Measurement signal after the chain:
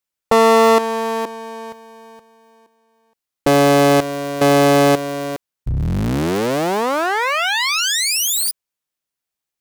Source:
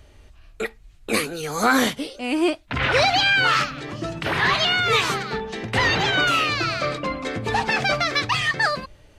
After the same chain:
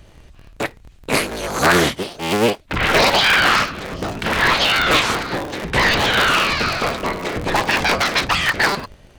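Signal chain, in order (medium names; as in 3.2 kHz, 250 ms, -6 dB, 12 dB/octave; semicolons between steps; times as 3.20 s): cycle switcher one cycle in 3, inverted; loudspeaker Doppler distortion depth 0.15 ms; trim +4 dB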